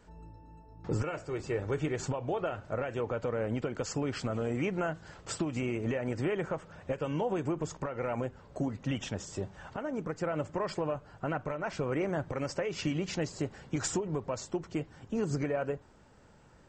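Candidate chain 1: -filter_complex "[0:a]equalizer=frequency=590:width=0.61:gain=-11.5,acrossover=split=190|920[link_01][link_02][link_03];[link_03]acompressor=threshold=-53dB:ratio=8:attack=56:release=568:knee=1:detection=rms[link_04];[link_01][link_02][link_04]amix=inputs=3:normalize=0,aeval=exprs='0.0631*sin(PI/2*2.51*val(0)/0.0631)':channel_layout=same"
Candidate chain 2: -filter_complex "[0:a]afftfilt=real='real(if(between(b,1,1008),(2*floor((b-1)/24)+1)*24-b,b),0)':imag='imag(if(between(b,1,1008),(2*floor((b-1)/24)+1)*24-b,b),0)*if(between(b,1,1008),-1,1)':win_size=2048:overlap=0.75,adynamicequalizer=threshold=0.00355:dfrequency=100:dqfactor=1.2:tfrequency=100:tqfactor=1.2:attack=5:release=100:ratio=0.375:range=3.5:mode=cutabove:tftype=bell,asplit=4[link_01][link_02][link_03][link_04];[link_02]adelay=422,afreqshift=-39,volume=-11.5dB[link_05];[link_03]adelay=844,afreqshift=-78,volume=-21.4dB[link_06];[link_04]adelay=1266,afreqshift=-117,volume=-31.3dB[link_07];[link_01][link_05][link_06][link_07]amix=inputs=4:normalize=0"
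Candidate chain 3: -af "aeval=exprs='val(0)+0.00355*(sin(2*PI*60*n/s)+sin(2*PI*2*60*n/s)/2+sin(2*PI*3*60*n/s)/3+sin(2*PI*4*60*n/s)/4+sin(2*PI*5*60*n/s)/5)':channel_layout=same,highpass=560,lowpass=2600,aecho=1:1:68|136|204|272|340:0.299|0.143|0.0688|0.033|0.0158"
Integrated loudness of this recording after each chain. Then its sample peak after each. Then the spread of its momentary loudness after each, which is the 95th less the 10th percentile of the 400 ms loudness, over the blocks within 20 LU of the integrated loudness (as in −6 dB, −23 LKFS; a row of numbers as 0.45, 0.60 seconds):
−32.0, −35.0, −40.0 LKFS; −24.0, −18.0, −23.0 dBFS; 6, 6, 9 LU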